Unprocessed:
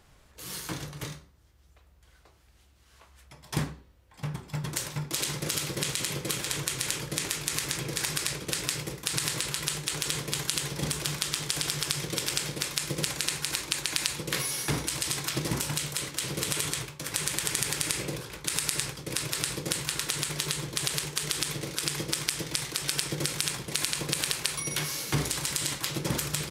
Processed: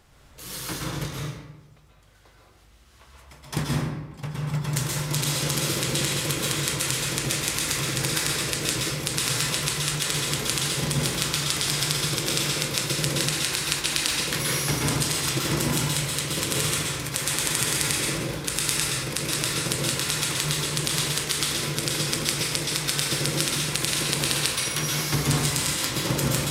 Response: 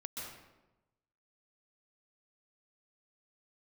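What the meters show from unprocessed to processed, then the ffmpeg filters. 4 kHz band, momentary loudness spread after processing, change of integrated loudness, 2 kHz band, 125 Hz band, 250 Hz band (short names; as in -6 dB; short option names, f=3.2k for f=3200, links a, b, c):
+5.5 dB, 5 LU, +5.5 dB, +6.0 dB, +7.5 dB, +7.0 dB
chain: -filter_complex "[1:a]atrim=start_sample=2205[a];[0:a][a]afir=irnorm=-1:irlink=0,volume=7dB"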